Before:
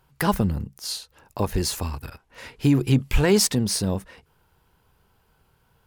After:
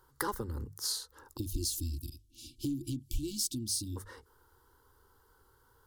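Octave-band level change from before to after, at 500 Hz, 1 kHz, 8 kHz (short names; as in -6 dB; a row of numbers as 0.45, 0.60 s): -19.5, -13.0, -8.0 dB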